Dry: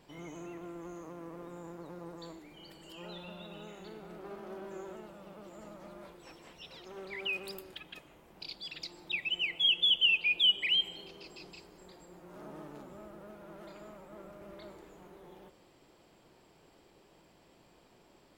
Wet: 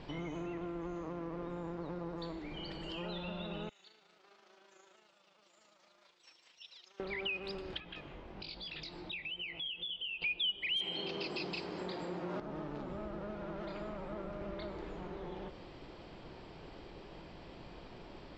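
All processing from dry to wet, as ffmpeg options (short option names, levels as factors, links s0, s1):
-filter_complex "[0:a]asettb=1/sr,asplit=3[s0][s1][s2];[s0]atrim=end=3.694[s3];[s1]atrim=start=3.69:end=7,asetpts=PTS-STARTPTS,afade=t=in:d=0.004:c=qsin,afade=t=out:st=3.306:d=0.004:c=qsin,bandpass=f=7300:t=q:w=1.8,tremolo=f=27:d=0.462[s4];[s2]atrim=start=6.996[s5];[s3][s4]acrossfade=d=0.004:c1=hsin:c2=qsin[s6];[s6][s5]acrossfade=d=0.004:c1=qsin:c2=hsin,asettb=1/sr,asplit=3[s7][s8][s9];[s7]atrim=end=7.804[s10];[s8]atrim=start=7.8:end=10.22,asetpts=PTS-STARTPTS,afade=t=in:d=0.004:c=qsin,afade=t=out:st=2.416:d=0.004:c=qsin,highshelf=f=9000:g=-9.5,flanger=delay=17:depth=5.4:speed=1.2,acompressor=threshold=0.00178:ratio=2:attack=3.2:release=140:knee=1:detection=peak[s11];[s9]atrim=start=10.216[s12];[s10][s11]acrossfade=d=0.004:c1=hsin:c2=qsin[s13];[s13][s12]acrossfade=d=0.004:c1=qsin:c2=hsin,asettb=1/sr,asplit=3[s14][s15][s16];[s14]atrim=end=10.764[s17];[s15]atrim=start=10.76:end=12.4,asetpts=PTS-STARTPTS,afade=t=in:d=0.004:c=qsin,afade=t=out:st=1.636:d=0.004:c=qsin,highpass=160,aeval=exprs='0.0891*sin(PI/2*2.24*val(0)/0.0891)':c=same[s18];[s16]atrim=start=12.396[s19];[s17][s18]acrossfade=d=0.004:c1=hsin:c2=qsin[s20];[s20][s19]acrossfade=d=0.004:c1=qsin:c2=hsin,lowpass=f=4900:w=0.5412,lowpass=f=4900:w=1.3066,lowshelf=f=95:g=10.5,acompressor=threshold=0.00316:ratio=3,volume=3.16"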